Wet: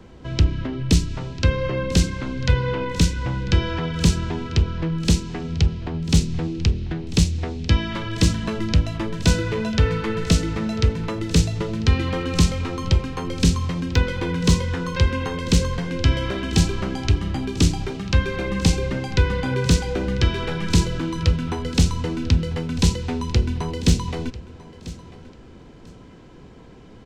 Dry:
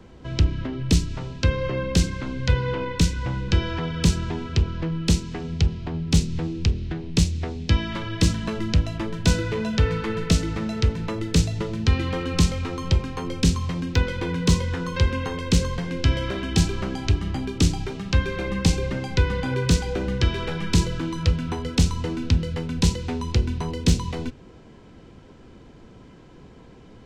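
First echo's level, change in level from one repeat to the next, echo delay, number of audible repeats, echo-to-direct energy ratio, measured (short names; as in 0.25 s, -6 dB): -18.0 dB, -13.5 dB, 0.994 s, 2, -18.0 dB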